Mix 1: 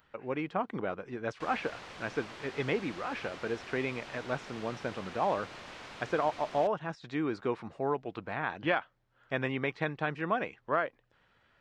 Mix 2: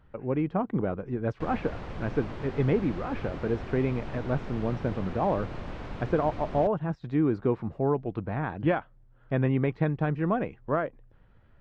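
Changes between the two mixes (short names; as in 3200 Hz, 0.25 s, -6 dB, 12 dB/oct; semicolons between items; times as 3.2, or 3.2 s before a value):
background +4.0 dB; master: add tilt -4.5 dB/oct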